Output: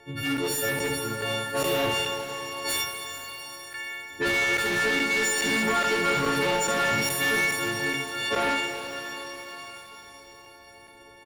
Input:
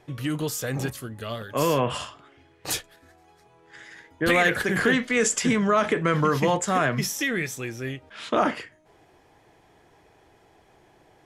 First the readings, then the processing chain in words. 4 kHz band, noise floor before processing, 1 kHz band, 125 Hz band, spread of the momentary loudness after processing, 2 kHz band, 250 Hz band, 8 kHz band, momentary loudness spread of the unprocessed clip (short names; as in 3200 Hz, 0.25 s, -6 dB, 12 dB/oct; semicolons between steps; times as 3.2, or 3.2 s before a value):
+5.0 dB, -59 dBFS, -1.0 dB, -7.0 dB, 14 LU, +2.5 dB, -5.0 dB, 0.0 dB, 13 LU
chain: frequency quantiser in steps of 4 st; high shelf 10000 Hz -6 dB; comb 2.2 ms, depth 34%; early reflections 54 ms -8.5 dB, 69 ms -6 dB; harmonic-percussive split percussive +5 dB; limiter -10 dBFS, peak gain reduction 8.5 dB; soft clip -22.5 dBFS, distortion -9 dB; tone controls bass -3 dB, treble -5 dB; crackling interface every 0.42 s zero, from 0.37; shimmer reverb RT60 3.9 s, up +12 st, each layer -8 dB, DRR 5 dB; gain +1 dB